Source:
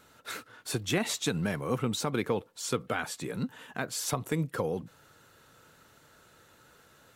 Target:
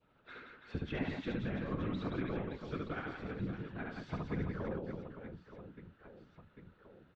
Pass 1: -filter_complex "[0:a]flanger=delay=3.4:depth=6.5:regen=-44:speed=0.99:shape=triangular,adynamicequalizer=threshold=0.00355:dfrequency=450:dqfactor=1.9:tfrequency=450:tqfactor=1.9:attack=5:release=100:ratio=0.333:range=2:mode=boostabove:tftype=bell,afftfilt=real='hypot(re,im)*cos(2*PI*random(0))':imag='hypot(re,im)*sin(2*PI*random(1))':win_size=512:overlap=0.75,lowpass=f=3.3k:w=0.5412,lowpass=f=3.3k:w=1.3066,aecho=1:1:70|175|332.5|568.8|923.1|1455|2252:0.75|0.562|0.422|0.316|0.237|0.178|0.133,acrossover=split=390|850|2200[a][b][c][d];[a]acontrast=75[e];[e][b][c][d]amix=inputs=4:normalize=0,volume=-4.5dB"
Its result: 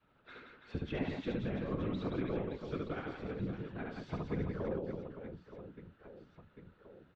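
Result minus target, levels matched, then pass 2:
2000 Hz band -3.5 dB
-filter_complex "[0:a]flanger=delay=3.4:depth=6.5:regen=-44:speed=0.99:shape=triangular,adynamicequalizer=threshold=0.00355:dfrequency=1600:dqfactor=1.9:tfrequency=1600:tqfactor=1.9:attack=5:release=100:ratio=0.333:range=2:mode=boostabove:tftype=bell,afftfilt=real='hypot(re,im)*cos(2*PI*random(0))':imag='hypot(re,im)*sin(2*PI*random(1))':win_size=512:overlap=0.75,lowpass=f=3.3k:w=0.5412,lowpass=f=3.3k:w=1.3066,aecho=1:1:70|175|332.5|568.8|923.1|1455|2252:0.75|0.562|0.422|0.316|0.237|0.178|0.133,acrossover=split=390|850|2200[a][b][c][d];[a]acontrast=75[e];[e][b][c][d]amix=inputs=4:normalize=0,volume=-4.5dB"

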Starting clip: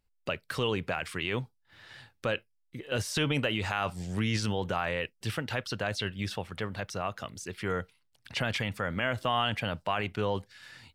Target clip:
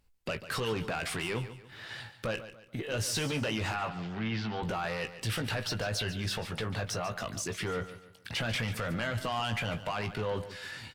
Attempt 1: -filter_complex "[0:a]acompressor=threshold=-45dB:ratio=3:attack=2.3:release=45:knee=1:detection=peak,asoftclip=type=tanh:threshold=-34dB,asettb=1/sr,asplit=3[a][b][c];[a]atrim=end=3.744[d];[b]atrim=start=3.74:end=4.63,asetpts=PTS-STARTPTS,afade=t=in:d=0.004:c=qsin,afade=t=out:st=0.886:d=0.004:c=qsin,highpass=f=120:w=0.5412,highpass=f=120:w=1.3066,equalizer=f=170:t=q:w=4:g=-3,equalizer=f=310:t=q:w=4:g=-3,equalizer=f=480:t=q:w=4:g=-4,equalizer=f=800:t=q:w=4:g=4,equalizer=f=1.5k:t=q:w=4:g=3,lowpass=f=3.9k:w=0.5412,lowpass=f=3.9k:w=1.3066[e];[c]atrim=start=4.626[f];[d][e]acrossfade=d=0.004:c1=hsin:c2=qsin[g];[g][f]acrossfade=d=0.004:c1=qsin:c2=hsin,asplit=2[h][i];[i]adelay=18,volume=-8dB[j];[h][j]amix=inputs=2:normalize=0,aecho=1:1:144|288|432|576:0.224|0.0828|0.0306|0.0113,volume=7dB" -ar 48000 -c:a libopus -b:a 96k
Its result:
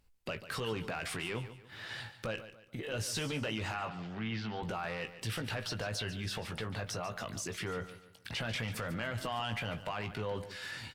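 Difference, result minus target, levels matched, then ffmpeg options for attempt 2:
compressor: peak gain reduction +6 dB
-filter_complex "[0:a]acompressor=threshold=-36dB:ratio=3:attack=2.3:release=45:knee=1:detection=peak,asoftclip=type=tanh:threshold=-34dB,asettb=1/sr,asplit=3[a][b][c];[a]atrim=end=3.744[d];[b]atrim=start=3.74:end=4.63,asetpts=PTS-STARTPTS,afade=t=in:d=0.004:c=qsin,afade=t=out:st=0.886:d=0.004:c=qsin,highpass=f=120:w=0.5412,highpass=f=120:w=1.3066,equalizer=f=170:t=q:w=4:g=-3,equalizer=f=310:t=q:w=4:g=-3,equalizer=f=480:t=q:w=4:g=-4,equalizer=f=800:t=q:w=4:g=4,equalizer=f=1.5k:t=q:w=4:g=3,lowpass=f=3.9k:w=0.5412,lowpass=f=3.9k:w=1.3066[e];[c]atrim=start=4.626[f];[d][e]acrossfade=d=0.004:c1=hsin:c2=qsin[g];[g][f]acrossfade=d=0.004:c1=qsin:c2=hsin,asplit=2[h][i];[i]adelay=18,volume=-8dB[j];[h][j]amix=inputs=2:normalize=0,aecho=1:1:144|288|432|576:0.224|0.0828|0.0306|0.0113,volume=7dB" -ar 48000 -c:a libopus -b:a 96k

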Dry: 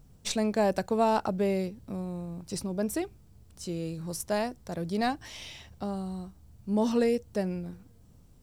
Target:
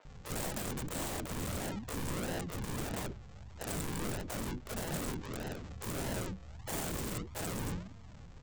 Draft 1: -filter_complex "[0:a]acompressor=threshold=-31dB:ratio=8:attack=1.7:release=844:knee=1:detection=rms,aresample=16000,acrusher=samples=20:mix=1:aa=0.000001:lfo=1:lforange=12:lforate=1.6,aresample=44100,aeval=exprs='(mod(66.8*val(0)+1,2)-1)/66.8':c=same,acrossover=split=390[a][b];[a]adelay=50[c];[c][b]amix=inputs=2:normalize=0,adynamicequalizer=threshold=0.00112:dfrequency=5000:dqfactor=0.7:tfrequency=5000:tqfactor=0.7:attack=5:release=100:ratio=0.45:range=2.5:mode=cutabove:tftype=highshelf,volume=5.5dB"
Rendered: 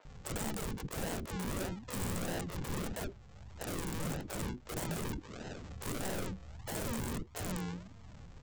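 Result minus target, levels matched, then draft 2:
compressor: peak gain reduction +13.5 dB
-filter_complex "[0:a]aresample=16000,acrusher=samples=20:mix=1:aa=0.000001:lfo=1:lforange=12:lforate=1.6,aresample=44100,aeval=exprs='(mod(66.8*val(0)+1,2)-1)/66.8':c=same,acrossover=split=390[a][b];[a]adelay=50[c];[c][b]amix=inputs=2:normalize=0,adynamicequalizer=threshold=0.00112:dfrequency=5000:dqfactor=0.7:tfrequency=5000:tqfactor=0.7:attack=5:release=100:ratio=0.45:range=2.5:mode=cutabove:tftype=highshelf,volume=5.5dB"

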